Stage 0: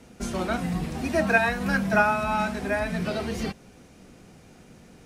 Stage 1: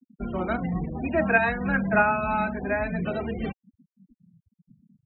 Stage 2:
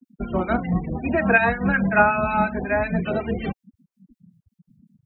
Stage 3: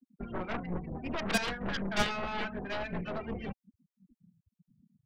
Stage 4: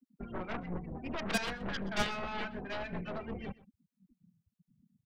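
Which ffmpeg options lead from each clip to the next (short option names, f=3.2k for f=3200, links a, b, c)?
-af "lowpass=f=3.6k:w=0.5412,lowpass=f=3.6k:w=1.3066,afftfilt=real='re*gte(hypot(re,im),0.0251)':imag='im*gte(hypot(re,im),0.0251)':win_size=1024:overlap=0.75"
-filter_complex "[0:a]acrossover=split=1500[a][b];[a]aeval=exprs='val(0)*(1-0.7/2+0.7/2*cos(2*PI*5.4*n/s))':c=same[c];[b]aeval=exprs='val(0)*(1-0.7/2-0.7/2*cos(2*PI*5.4*n/s))':c=same[d];[c][d]amix=inputs=2:normalize=0,volume=7.5dB"
-filter_complex "[0:a]aeval=exprs='0.668*(cos(1*acos(clip(val(0)/0.668,-1,1)))-cos(1*PI/2))+0.266*(cos(3*acos(clip(val(0)/0.668,-1,1)))-cos(3*PI/2))+0.0237*(cos(5*acos(clip(val(0)/0.668,-1,1)))-cos(5*PI/2))+0.0266*(cos(7*acos(clip(val(0)/0.668,-1,1)))-cos(7*PI/2))+0.0168*(cos(8*acos(clip(val(0)/0.668,-1,1)))-cos(8*PI/2))':c=same,acrossover=split=200[a][b];[b]asoftclip=type=tanh:threshold=-22dB[c];[a][c]amix=inputs=2:normalize=0"
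-af "aecho=1:1:125:0.106,volume=-3dB"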